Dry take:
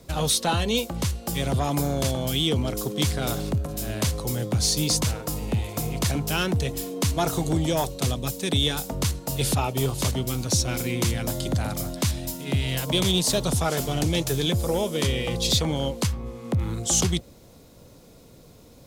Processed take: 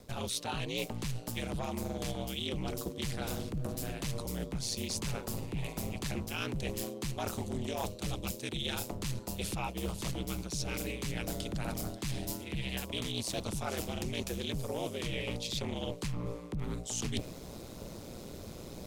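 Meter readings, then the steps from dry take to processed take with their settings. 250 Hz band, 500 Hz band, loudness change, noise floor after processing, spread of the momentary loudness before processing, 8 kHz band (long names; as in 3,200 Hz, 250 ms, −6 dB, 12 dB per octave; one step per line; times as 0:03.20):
−10.5 dB, −11.5 dB, −12.0 dB, −46 dBFS, 6 LU, −13.5 dB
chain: ring modulation 60 Hz
dynamic equaliser 2,500 Hz, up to +6 dB, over −50 dBFS, Q 3.3
reversed playback
downward compressor 16 to 1, threshold −40 dBFS, peak gain reduction 21.5 dB
reversed playback
highs frequency-modulated by the lows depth 0.18 ms
level +8 dB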